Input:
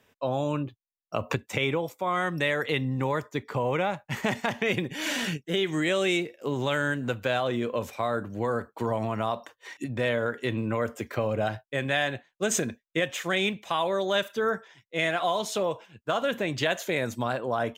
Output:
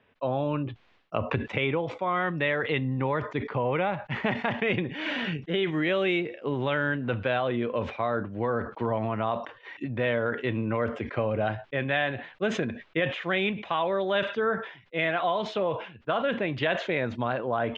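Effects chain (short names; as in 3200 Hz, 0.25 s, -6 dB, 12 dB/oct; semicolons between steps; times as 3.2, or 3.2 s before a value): LPF 3200 Hz 24 dB/oct; sustainer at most 100 dB/s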